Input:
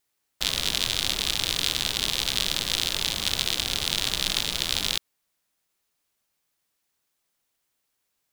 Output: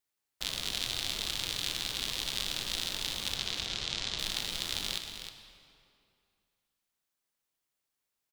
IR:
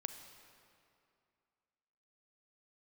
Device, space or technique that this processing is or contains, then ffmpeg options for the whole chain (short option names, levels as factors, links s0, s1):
cave: -filter_complex "[0:a]asettb=1/sr,asplit=3[s0][s1][s2];[s0]atrim=end=3.354[s3];[s1]atrim=start=3.35:end=4.19,asetpts=PTS-STARTPTS,afade=t=in:d=0.004:c=qsin,afade=t=out:st=0.836:d=0.004:c=qsin,lowpass=f=7100:w=0.5412,lowpass=f=7100:w=1.3066[s4];[s2]atrim=start=4.186[s5];[s3][s4]acrossfade=d=0.004:c1=hsin:c2=qsin[s6];[s6][s5]acrossfade=d=0.004:c1=qsin:c2=hsin,aecho=1:1:311:0.355[s7];[1:a]atrim=start_sample=2205[s8];[s7][s8]afir=irnorm=-1:irlink=0,volume=0.447"